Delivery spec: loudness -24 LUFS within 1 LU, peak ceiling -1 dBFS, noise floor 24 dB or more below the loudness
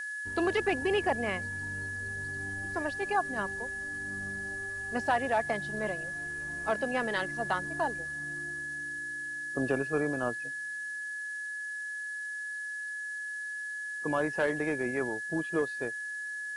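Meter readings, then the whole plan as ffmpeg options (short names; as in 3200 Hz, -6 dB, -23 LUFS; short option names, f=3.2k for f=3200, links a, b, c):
steady tone 1700 Hz; tone level -35 dBFS; noise floor -38 dBFS; noise floor target -57 dBFS; loudness -33.0 LUFS; peak -16.0 dBFS; loudness target -24.0 LUFS
-> -af "bandreject=f=1.7k:w=30"
-af "afftdn=nr=19:nf=-38"
-af "volume=9dB"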